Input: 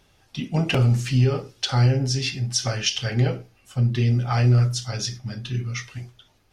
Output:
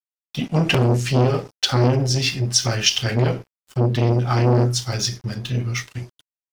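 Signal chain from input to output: crossover distortion -44.5 dBFS; transformer saturation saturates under 580 Hz; trim +6.5 dB

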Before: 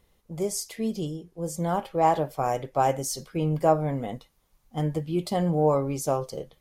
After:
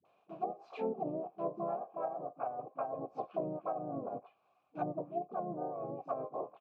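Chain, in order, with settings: dynamic bell 130 Hz, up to +3 dB, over -36 dBFS, Q 1.1; harmony voices -3 st -4 dB, +3 st -2 dB, +12 st 0 dB; high-pass 96 Hz 24 dB/octave; phase dispersion highs, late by 53 ms, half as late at 420 Hz; in parallel at -11 dB: bit crusher 6-bit; on the sum: vowel filter a; reverse; compression 8:1, threshold -37 dBFS, peak gain reduction 20.5 dB; reverse; low-pass that closes with the level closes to 380 Hz, closed at -37 dBFS; treble shelf 4.4 kHz -10 dB; trim +8.5 dB

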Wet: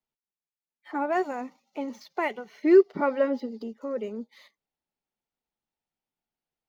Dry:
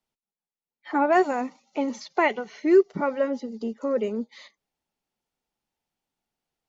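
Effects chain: median filter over 5 samples; time-frequency box 2.63–3.63 s, 220–5300 Hz +7 dB; trim -6.5 dB

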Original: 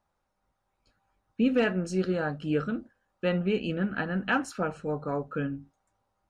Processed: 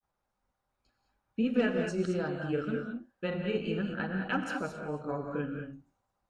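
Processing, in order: granulator 100 ms, grains 20 per s, spray 18 ms, pitch spread up and down by 0 st; gated-style reverb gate 240 ms rising, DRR 3 dB; trim -4 dB

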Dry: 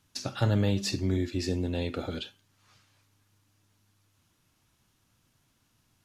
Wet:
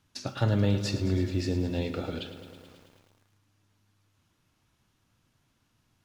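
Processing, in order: treble shelf 5.9 kHz -8 dB; bit-crushed delay 108 ms, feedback 80%, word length 9-bit, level -12.5 dB

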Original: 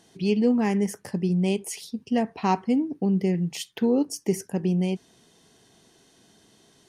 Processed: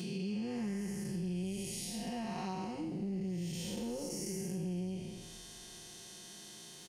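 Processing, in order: spectral blur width 344 ms; treble shelf 2.4 kHz +10.5 dB; comb 5.6 ms, depth 99%; compression 4:1, threshold -39 dBFS, peak gain reduction 17.5 dB; frequency-shifting echo 278 ms, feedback 60%, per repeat -73 Hz, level -20 dB

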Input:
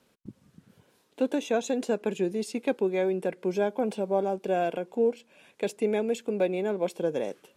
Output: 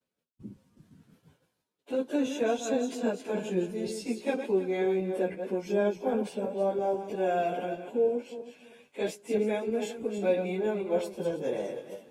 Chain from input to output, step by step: backward echo that repeats 101 ms, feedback 45%, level -7 dB; plain phase-vocoder stretch 1.6×; expander -57 dBFS

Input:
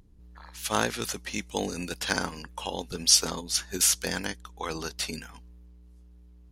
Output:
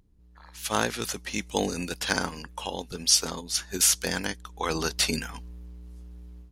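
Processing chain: level rider gain up to 15 dB; trim -6 dB

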